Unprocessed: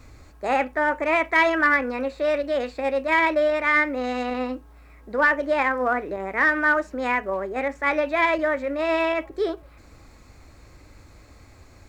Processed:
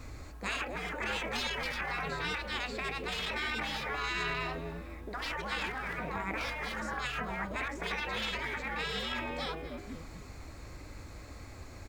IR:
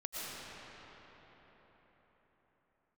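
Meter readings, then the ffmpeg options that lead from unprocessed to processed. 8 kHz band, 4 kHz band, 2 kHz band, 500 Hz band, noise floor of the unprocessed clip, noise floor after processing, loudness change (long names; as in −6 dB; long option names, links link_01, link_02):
can't be measured, +1.5 dB, −12.5 dB, −18.0 dB, −50 dBFS, −48 dBFS, −12.5 dB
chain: -filter_complex "[0:a]asplit=2[link_01][link_02];[link_02]asplit=4[link_03][link_04][link_05][link_06];[link_03]adelay=246,afreqshift=-85,volume=-17dB[link_07];[link_04]adelay=492,afreqshift=-170,volume=-24.1dB[link_08];[link_05]adelay=738,afreqshift=-255,volume=-31.3dB[link_09];[link_06]adelay=984,afreqshift=-340,volume=-38.4dB[link_10];[link_07][link_08][link_09][link_10]amix=inputs=4:normalize=0[link_11];[link_01][link_11]amix=inputs=2:normalize=0,afftfilt=real='re*lt(hypot(re,im),0.1)':imag='im*lt(hypot(re,im),0.1)':win_size=1024:overlap=0.75,volume=2dB"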